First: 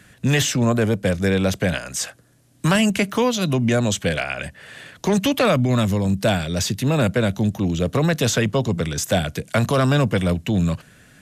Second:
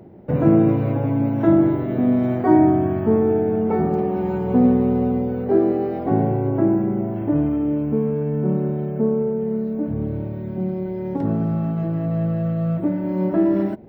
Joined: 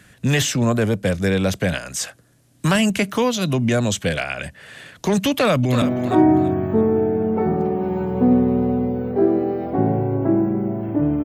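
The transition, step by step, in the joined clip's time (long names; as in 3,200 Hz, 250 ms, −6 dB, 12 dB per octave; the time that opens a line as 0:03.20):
first
0:05.30–0:05.82: delay throw 330 ms, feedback 30%, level −10.5 dB
0:05.82: continue with second from 0:02.15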